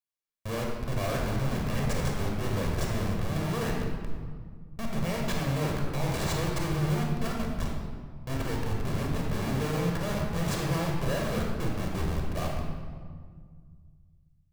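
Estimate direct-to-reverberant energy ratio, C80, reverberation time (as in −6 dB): −1.0 dB, 3.0 dB, 1.8 s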